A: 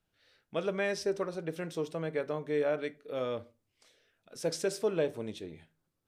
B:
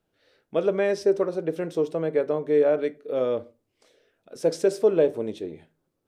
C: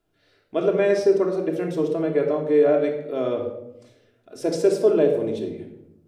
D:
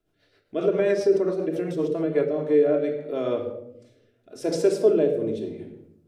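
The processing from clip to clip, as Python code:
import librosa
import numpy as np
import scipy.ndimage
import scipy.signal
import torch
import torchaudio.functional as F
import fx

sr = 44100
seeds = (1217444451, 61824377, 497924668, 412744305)

y1 = fx.peak_eq(x, sr, hz=420.0, db=11.0, octaves=2.2)
y2 = fx.room_shoebox(y1, sr, seeds[0], volume_m3=2800.0, walls='furnished', distance_m=3.1)
y3 = fx.rotary_switch(y2, sr, hz=7.5, then_hz=0.8, switch_at_s=1.75)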